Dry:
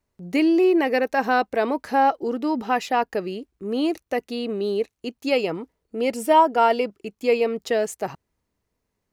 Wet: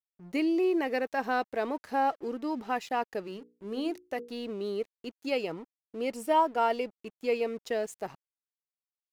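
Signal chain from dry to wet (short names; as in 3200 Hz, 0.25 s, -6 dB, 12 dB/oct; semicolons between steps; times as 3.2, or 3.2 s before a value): crossover distortion -45.5 dBFS; 3.22–4.3 notches 60/120/180/240/300/360/420/480 Hz; gain -8.5 dB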